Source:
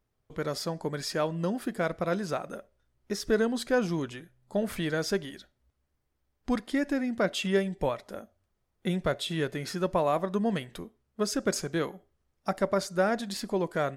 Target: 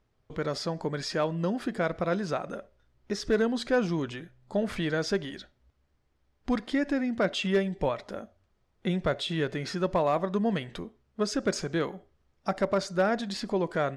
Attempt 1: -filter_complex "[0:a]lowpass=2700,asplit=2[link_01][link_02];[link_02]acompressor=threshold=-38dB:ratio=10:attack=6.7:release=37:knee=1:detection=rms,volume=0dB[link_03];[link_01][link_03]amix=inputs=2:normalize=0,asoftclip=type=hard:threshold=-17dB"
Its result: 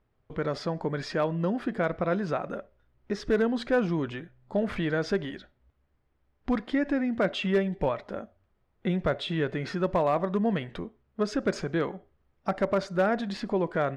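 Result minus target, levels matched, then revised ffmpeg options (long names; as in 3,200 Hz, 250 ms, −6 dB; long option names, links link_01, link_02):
downward compressor: peak gain reduction −7.5 dB; 4,000 Hz band −4.0 dB
-filter_complex "[0:a]lowpass=5600,asplit=2[link_01][link_02];[link_02]acompressor=threshold=-46dB:ratio=10:attack=6.7:release=37:knee=1:detection=rms,volume=0dB[link_03];[link_01][link_03]amix=inputs=2:normalize=0,asoftclip=type=hard:threshold=-17dB"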